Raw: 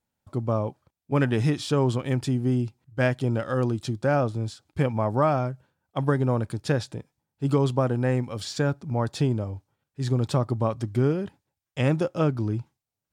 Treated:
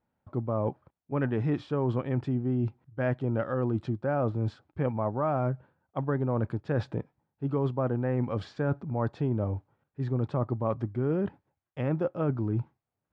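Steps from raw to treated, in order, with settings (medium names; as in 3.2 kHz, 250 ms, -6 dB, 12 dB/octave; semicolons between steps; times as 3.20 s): low-pass 1.6 kHz 12 dB/octave; bass shelf 88 Hz -5.5 dB; reverse; compression 6:1, threshold -31 dBFS, peak gain reduction 13 dB; reverse; trim +5.5 dB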